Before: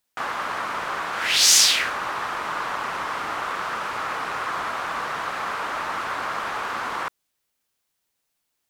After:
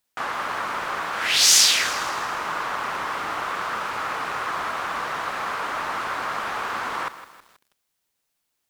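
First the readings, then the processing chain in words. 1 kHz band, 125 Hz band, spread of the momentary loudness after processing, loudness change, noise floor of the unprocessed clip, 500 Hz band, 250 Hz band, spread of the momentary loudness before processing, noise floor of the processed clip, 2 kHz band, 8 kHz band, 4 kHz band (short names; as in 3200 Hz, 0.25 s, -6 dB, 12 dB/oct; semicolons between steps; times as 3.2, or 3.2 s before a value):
0.0 dB, 0.0 dB, 12 LU, +0.5 dB, -77 dBFS, 0.0 dB, 0.0 dB, 12 LU, -77 dBFS, 0.0 dB, +0.5 dB, +0.5 dB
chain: lo-fi delay 0.161 s, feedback 55%, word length 7-bit, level -13 dB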